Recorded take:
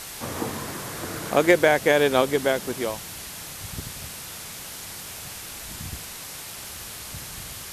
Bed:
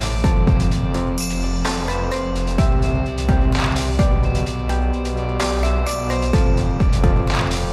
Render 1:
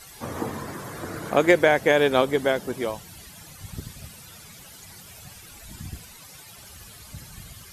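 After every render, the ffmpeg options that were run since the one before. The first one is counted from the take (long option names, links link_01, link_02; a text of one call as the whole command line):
ffmpeg -i in.wav -af "afftdn=noise_reduction=13:noise_floor=-38" out.wav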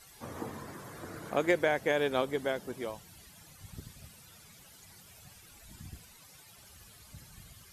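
ffmpeg -i in.wav -af "volume=-10dB" out.wav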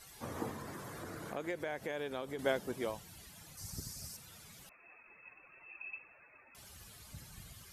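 ffmpeg -i in.wav -filter_complex "[0:a]asettb=1/sr,asplit=3[link_01][link_02][link_03];[link_01]atrim=end=0.514[link_04];[link_02]atrim=start=0.51:end=2.39,asetpts=PTS-STARTPTS,afade=type=in:duration=0.004:curve=qsin,afade=type=out:start_time=1.876:duration=0.004:curve=qsin,acompressor=threshold=-41dB:ratio=2.5:attack=3.2:release=140:knee=1:detection=peak[link_05];[link_03]atrim=start=2.386[link_06];[link_04][link_05]acrossfade=duration=0.004:curve1=hsin:curve2=qsin[link_07];[link_07][link_06]acrossfade=duration=0.004:curve1=qsin:curve2=hsin,asettb=1/sr,asplit=3[link_08][link_09][link_10];[link_08]atrim=end=3.574[link_11];[link_09]atrim=start=3.57:end=4.17,asetpts=PTS-STARTPTS,afade=type=in:duration=0.004:curve=qsin,afade=type=out:start_time=0.596:duration=0.004:curve=qsin,highshelf=frequency=4200:width_type=q:width=3:gain=7[link_12];[link_10]atrim=start=4.166[link_13];[link_11][link_12]acrossfade=duration=0.004:curve1=hsin:curve2=qsin[link_14];[link_14][link_13]acrossfade=duration=0.004:curve1=qsin:curve2=hsin,asettb=1/sr,asplit=3[link_15][link_16][link_17];[link_15]atrim=end=4.694[link_18];[link_16]atrim=start=4.69:end=6.55,asetpts=PTS-STARTPTS,afade=type=in:duration=0.004:curve=qsin,afade=type=out:start_time=1.856:duration=0.004:curve=qsin,lowpass=frequency=2300:width_type=q:width=0.5098,lowpass=frequency=2300:width_type=q:width=0.6013,lowpass=frequency=2300:width_type=q:width=0.9,lowpass=frequency=2300:width_type=q:width=2.563,afreqshift=-2700[link_19];[link_17]atrim=start=6.546[link_20];[link_18][link_19]acrossfade=duration=0.004:curve1=hsin:curve2=qsin[link_21];[link_21][link_20]acrossfade=duration=0.004:curve1=qsin:curve2=hsin" out.wav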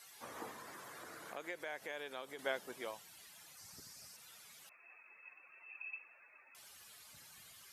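ffmpeg -i in.wav -filter_complex "[0:a]highpass=frequency=1100:poles=1,acrossover=split=3700[link_01][link_02];[link_02]acompressor=threshold=-55dB:ratio=4:attack=1:release=60[link_03];[link_01][link_03]amix=inputs=2:normalize=0" out.wav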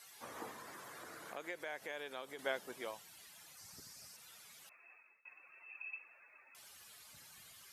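ffmpeg -i in.wav -filter_complex "[0:a]asplit=2[link_01][link_02];[link_01]atrim=end=5.25,asetpts=PTS-STARTPTS,afade=type=out:start_time=4.72:duration=0.53:curve=qsin:silence=0.0630957[link_03];[link_02]atrim=start=5.25,asetpts=PTS-STARTPTS,afade=type=in:duration=0.004:curve=hsin:silence=0.0630957[link_04];[link_03][link_04]concat=n=2:v=0:a=1" out.wav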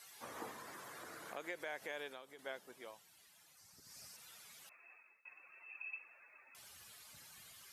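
ffmpeg -i in.wav -filter_complex "[0:a]asettb=1/sr,asplit=3[link_01][link_02][link_03];[link_01]atrim=end=6.474[link_04];[link_02]atrim=start=6.47:end=6.92,asetpts=PTS-STARTPTS,afade=type=in:duration=0.004:curve=qsin,afade=type=out:start_time=0.446:duration=0.004:curve=qsin,equalizer=frequency=91:width=0.7:gain=7[link_05];[link_03]atrim=start=6.916[link_06];[link_04][link_05]acrossfade=duration=0.004:curve1=hsin:curve2=qsin[link_07];[link_07][link_06]acrossfade=duration=0.004:curve1=qsin:curve2=hsin,asplit=3[link_08][link_09][link_10];[link_08]atrim=end=2.19,asetpts=PTS-STARTPTS,afade=type=out:start_time=2.06:duration=0.13:silence=0.398107[link_11];[link_09]atrim=start=2.19:end=3.83,asetpts=PTS-STARTPTS,volume=-8dB[link_12];[link_10]atrim=start=3.83,asetpts=PTS-STARTPTS,afade=type=in:duration=0.13:silence=0.398107[link_13];[link_11][link_12][link_13]concat=n=3:v=0:a=1" out.wav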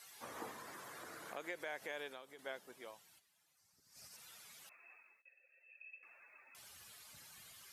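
ffmpeg -i in.wav -filter_complex "[0:a]asplit=3[link_01][link_02][link_03];[link_01]afade=type=out:start_time=3.18:duration=0.02[link_04];[link_02]agate=range=-11dB:threshold=-57dB:ratio=16:release=100:detection=peak,afade=type=in:start_time=3.18:duration=0.02,afade=type=out:start_time=4.11:duration=0.02[link_05];[link_03]afade=type=in:start_time=4.11:duration=0.02[link_06];[link_04][link_05][link_06]amix=inputs=3:normalize=0,asettb=1/sr,asplit=3[link_07][link_08][link_09];[link_07]atrim=end=5.224[link_10];[link_08]atrim=start=5.22:end=6.03,asetpts=PTS-STARTPTS,afade=type=in:duration=0.004:curve=qsin,afade=type=out:start_time=0.806:duration=0.004:curve=qsin,asplit=3[link_11][link_12][link_13];[link_11]bandpass=frequency=530:width_type=q:width=8,volume=0dB[link_14];[link_12]bandpass=frequency=1840:width_type=q:width=8,volume=-6dB[link_15];[link_13]bandpass=frequency=2480:width_type=q:width=8,volume=-9dB[link_16];[link_14][link_15][link_16]amix=inputs=3:normalize=0[link_17];[link_09]atrim=start=6.026[link_18];[link_10][link_17]acrossfade=duration=0.004:curve1=hsin:curve2=qsin[link_19];[link_19][link_18]acrossfade=duration=0.004:curve1=qsin:curve2=hsin" out.wav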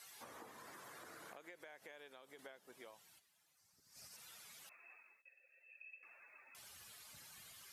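ffmpeg -i in.wav -af "acompressor=threshold=-52dB:ratio=12" out.wav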